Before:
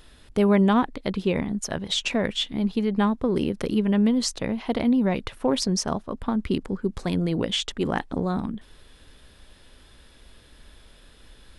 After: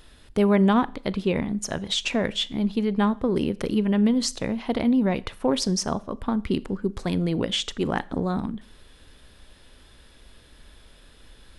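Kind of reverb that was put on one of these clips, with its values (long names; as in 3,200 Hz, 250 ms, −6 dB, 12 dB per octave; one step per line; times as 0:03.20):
four-comb reverb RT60 0.47 s, combs from 27 ms, DRR 19.5 dB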